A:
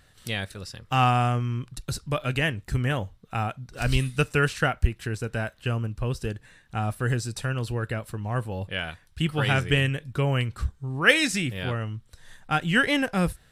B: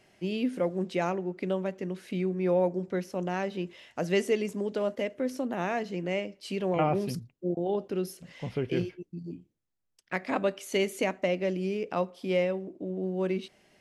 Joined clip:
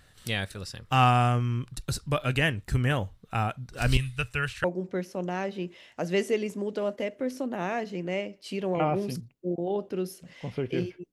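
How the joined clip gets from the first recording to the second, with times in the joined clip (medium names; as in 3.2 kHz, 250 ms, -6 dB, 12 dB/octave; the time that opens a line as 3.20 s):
A
3.97–4.64 s: FFT filter 120 Hz 0 dB, 180 Hz -18 dB, 2.6 kHz -2 dB, 5.2 kHz -9 dB
4.64 s: go over to B from 2.63 s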